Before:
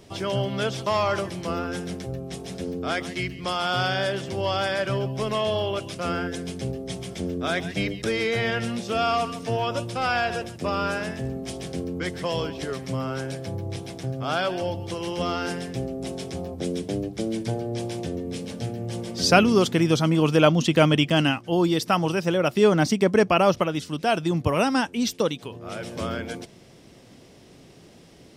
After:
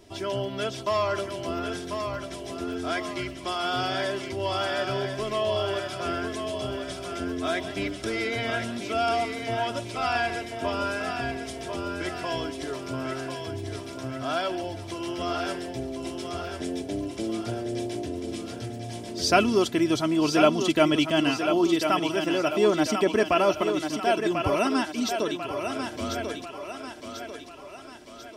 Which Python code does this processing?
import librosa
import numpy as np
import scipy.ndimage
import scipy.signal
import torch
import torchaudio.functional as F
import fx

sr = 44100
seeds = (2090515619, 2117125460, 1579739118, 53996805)

y = x + 0.65 * np.pad(x, (int(3.0 * sr / 1000.0), 0))[:len(x)]
y = fx.echo_thinned(y, sr, ms=1043, feedback_pct=51, hz=250.0, wet_db=-6)
y = y * 10.0 ** (-4.5 / 20.0)